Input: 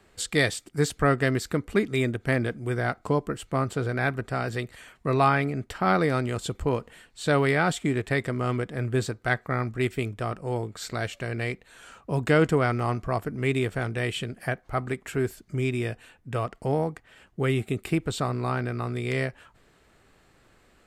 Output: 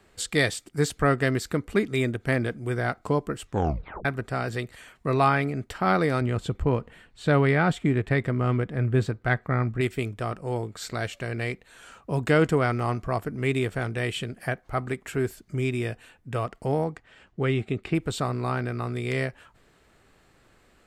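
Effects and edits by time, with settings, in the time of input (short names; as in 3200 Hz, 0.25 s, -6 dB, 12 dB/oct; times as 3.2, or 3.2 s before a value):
3.41 tape stop 0.64 s
6.21–9.81 tone controls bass +5 dB, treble -10 dB
16.84–17.94 LPF 8400 Hz -> 3700 Hz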